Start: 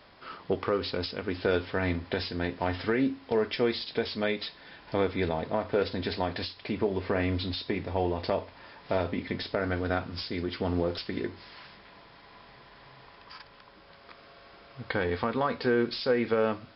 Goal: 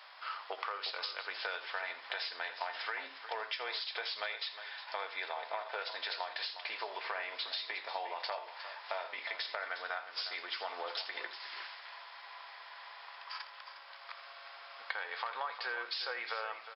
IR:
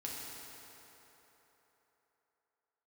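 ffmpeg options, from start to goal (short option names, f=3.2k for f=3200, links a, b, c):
-filter_complex "[0:a]highpass=f=780:w=0.5412,highpass=f=780:w=1.3066,acompressor=threshold=-39dB:ratio=6,asplit=2[a][b];[b]aecho=0:1:82|359:0.2|0.266[c];[a][c]amix=inputs=2:normalize=0,volume=3.5dB"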